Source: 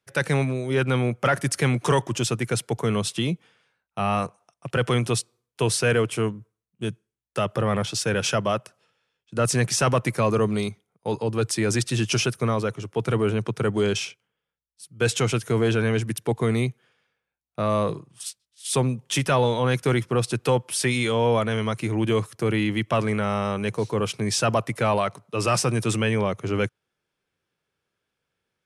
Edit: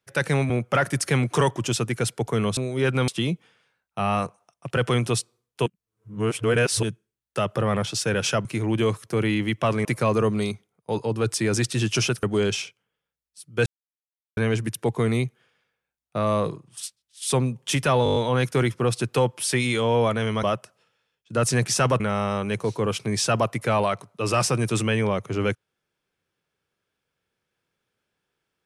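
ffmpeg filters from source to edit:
-filter_complex "[0:a]asplit=19[s0][s1][s2][s3][s4][s5][s6][s7][s8][s9][s10][s11][s12][s13][s14][s15][s16][s17][s18];[s0]atrim=end=0.502[s19];[s1]atrim=start=1.008:end=3.082[s20];[s2]atrim=start=0.498:end=1.012[s21];[s3]atrim=start=3.078:end=5.662[s22];[s4]atrim=start=5.658:end=6.832,asetpts=PTS-STARTPTS,areverse[s23];[s5]atrim=start=6.828:end=8.452[s24];[s6]atrim=start=21.738:end=23.142[s25];[s7]atrim=start=10.018:end=12.402[s26];[s8]atrim=start=13.658:end=15.09,asetpts=PTS-STARTPTS,afade=t=out:st=1.428:d=0.004:c=hsin[s27];[s9]atrim=start=15.09:end=15.8,asetpts=PTS-STARTPTS,volume=0[s28];[s10]atrim=start=15.8:end=19.492,asetpts=PTS-STARTPTS,afade=t=in:d=0.004:c=hsin[s29];[s11]atrim=start=19.468:end=19.492[s30];[s12]atrim=start=19.468:end=19.492[s31];[s13]atrim=start=19.468:end=19.492[s32];[s14]atrim=start=19.468:end=19.492[s33];[s15]atrim=start=19.468:end=19.492[s34];[s16]atrim=start=19.468:end=21.742[s35];[s17]atrim=start=8.448:end=10.022[s36];[s18]atrim=start=23.138[s37];[s19][s20]acrossfade=d=0.004:c1=hsin:c2=hsin[s38];[s38][s21]acrossfade=d=0.004:c1=hsin:c2=hsin[s39];[s39][s22]acrossfade=d=0.004:c1=hsin:c2=hsin[s40];[s40][s23]acrossfade=d=0.004:c1=hsin:c2=hsin[s41];[s41][s24]acrossfade=d=0.004:c1=hsin:c2=hsin[s42];[s42][s25]acrossfade=d=0.004:c1=hsin:c2=hsin[s43];[s43][s26]acrossfade=d=0.004:c1=hsin:c2=hsin[s44];[s27][s28][s29]concat=n=3:v=0:a=1[s45];[s44][s45]acrossfade=d=0.004:c1=hsin:c2=hsin[s46];[s46][s30]acrossfade=d=0.004:c1=hsin:c2=hsin[s47];[s47][s31]acrossfade=d=0.004:c1=hsin:c2=hsin[s48];[s48][s32]acrossfade=d=0.004:c1=hsin:c2=hsin[s49];[s49][s33]acrossfade=d=0.004:c1=hsin:c2=hsin[s50];[s50][s34]acrossfade=d=0.004:c1=hsin:c2=hsin[s51];[s51][s35]acrossfade=d=0.004:c1=hsin:c2=hsin[s52];[s52][s36]acrossfade=d=0.004:c1=hsin:c2=hsin[s53];[s53][s37]acrossfade=d=0.004:c1=hsin:c2=hsin"

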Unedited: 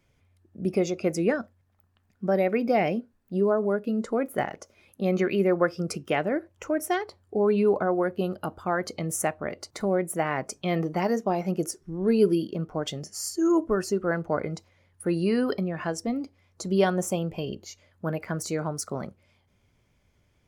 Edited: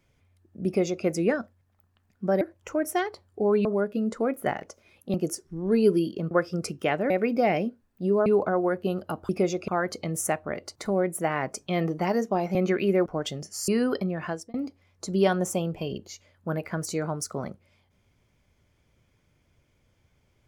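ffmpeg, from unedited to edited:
-filter_complex "[0:a]asplit=13[s0][s1][s2][s3][s4][s5][s6][s7][s8][s9][s10][s11][s12];[s0]atrim=end=2.412[s13];[s1]atrim=start=6.358:end=7.602[s14];[s2]atrim=start=3.568:end=5.062[s15];[s3]atrim=start=11.498:end=12.672[s16];[s4]atrim=start=5.568:end=6.362[s17];[s5]atrim=start=2.408:end=3.572[s18];[s6]atrim=start=7.598:end=8.632[s19];[s7]atrim=start=0.658:end=1.052[s20];[s8]atrim=start=8.628:end=11.502[s21];[s9]atrim=start=5.058:end=5.572[s22];[s10]atrim=start=12.668:end=13.292[s23];[s11]atrim=start=15.248:end=16.11,asetpts=PTS-STARTPTS,afade=t=out:st=0.572:d=0.29[s24];[s12]atrim=start=16.11,asetpts=PTS-STARTPTS,afade=t=in:d=0.004:c=hsin[s25];[s13][s14]acrossfade=d=0.004:c1=hsin:c2=hsin[s26];[s26][s15]acrossfade=d=0.004:c1=hsin:c2=hsin[s27];[s27][s16]acrossfade=d=0.004:c1=hsin:c2=hsin[s28];[s28][s17]acrossfade=d=0.004:c1=hsin:c2=hsin[s29];[s29][s18]acrossfade=d=0.004:c1=hsin:c2=hsin[s30];[s30][s19]acrossfade=d=0.004:c1=hsin:c2=hsin[s31];[s31][s20]acrossfade=d=0.004:c1=hsin:c2=hsin[s32];[s32][s21]acrossfade=d=0.004:c1=hsin:c2=hsin[s33];[s33][s22]acrossfade=d=0.004:c1=hsin:c2=hsin[s34];[s34][s23]acrossfade=d=0.004:c1=hsin:c2=hsin[s35];[s24][s25]concat=n=2:v=0:a=1[s36];[s35][s36]acrossfade=d=0.004:c1=hsin:c2=hsin"

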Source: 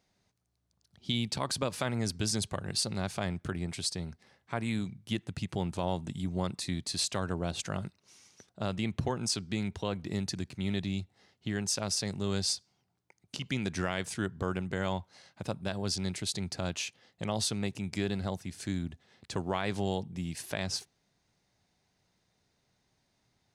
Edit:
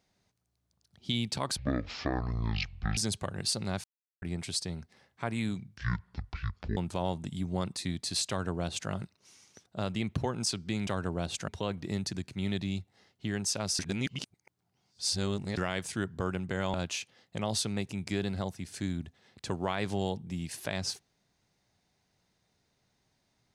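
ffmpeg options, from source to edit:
-filter_complex "[0:a]asplit=12[s0][s1][s2][s3][s4][s5][s6][s7][s8][s9][s10][s11];[s0]atrim=end=1.574[s12];[s1]atrim=start=1.57:end=2.27,asetpts=PTS-STARTPTS,asetrate=22050,aresample=44100[s13];[s2]atrim=start=2.266:end=3.14,asetpts=PTS-STARTPTS,afade=t=out:st=0.87:d=0.004:c=hsin[s14];[s3]atrim=start=3.14:end=3.52,asetpts=PTS-STARTPTS,volume=0[s15];[s4]atrim=start=3.52:end=5.074,asetpts=PTS-STARTPTS,afade=t=in:d=0.004:c=hsin[s16];[s5]atrim=start=5.07:end=5.6,asetpts=PTS-STARTPTS,asetrate=23373,aresample=44100[s17];[s6]atrim=start=5.596:end=9.702[s18];[s7]atrim=start=7.118:end=7.732[s19];[s8]atrim=start=9.698:end=12.012[s20];[s9]atrim=start=12.008:end=13.792,asetpts=PTS-STARTPTS,areverse[s21];[s10]atrim=start=13.788:end=14.962[s22];[s11]atrim=start=16.598[s23];[s12][s13]acrossfade=d=0.004:c1=hsin:c2=hsin[s24];[s14][s15][s16]concat=n=3:v=0:a=1[s25];[s24][s25]acrossfade=d=0.004:c1=hsin:c2=hsin[s26];[s26][s17]acrossfade=d=0.004:c1=hsin:c2=hsin[s27];[s27][s18]acrossfade=d=0.004:c1=hsin:c2=hsin[s28];[s28][s19]acrossfade=d=0.004:c1=hsin:c2=hsin[s29];[s29][s20]acrossfade=d=0.004:c1=hsin:c2=hsin[s30];[s30][s21]acrossfade=d=0.004:c1=hsin:c2=hsin[s31];[s31][s22]acrossfade=d=0.004:c1=hsin:c2=hsin[s32];[s32][s23]acrossfade=d=0.004:c1=hsin:c2=hsin"

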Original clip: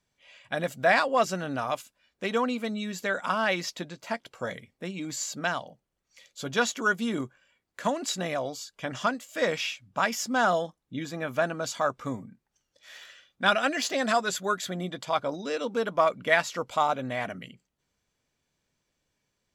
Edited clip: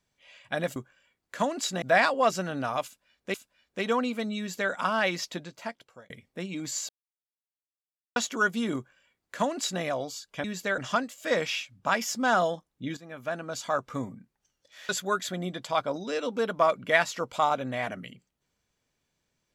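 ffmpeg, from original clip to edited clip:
-filter_complex "[0:a]asplit=11[s0][s1][s2][s3][s4][s5][s6][s7][s8][s9][s10];[s0]atrim=end=0.762[s11];[s1]atrim=start=7.208:end=8.272[s12];[s2]atrim=start=0.758:end=2.282[s13];[s3]atrim=start=1.788:end=4.55,asetpts=PTS-STARTPTS,afade=t=out:st=2.062:d=0.7[s14];[s4]atrim=start=4.55:end=5.34,asetpts=PTS-STARTPTS,afade=t=in:d=0.004:c=hsin,afade=t=out:st=0.786:d=0.004:c=hsin[s15];[s5]atrim=start=5.34:end=6.61,asetpts=PTS-STARTPTS,volume=0[s16];[s6]atrim=start=6.61:end=8.892,asetpts=PTS-STARTPTS,afade=t=in:d=0.004:c=hsin[s17];[s7]atrim=start=2.828:end=3.172[s18];[s8]atrim=start=8.888:end=11.08,asetpts=PTS-STARTPTS,afade=t=out:st=2.188:d=0.004:c=hsin:silence=0.188365[s19];[s9]atrim=start=11.08:end=13.002,asetpts=PTS-STARTPTS,afade=t=in:d=0.93:silence=0.188365[s20];[s10]atrim=start=14.268[s21];[s11][s12]acrossfade=d=0.004:c1=hsin:c2=hsin[s22];[s22][s13]acrossfade=d=0.004:c1=hsin:c2=hsin[s23];[s14][s15][s16][s17]concat=n=4:v=0:a=1[s24];[s23][s24]acrossfade=d=0.004:c1=hsin:c2=hsin[s25];[s25][s18]acrossfade=d=0.004:c1=hsin:c2=hsin[s26];[s19][s20]concat=n=2:v=0:a=1[s27];[s26][s27]acrossfade=d=0.004:c1=hsin:c2=hsin[s28];[s28][s21]acrossfade=d=0.004:c1=hsin:c2=hsin"

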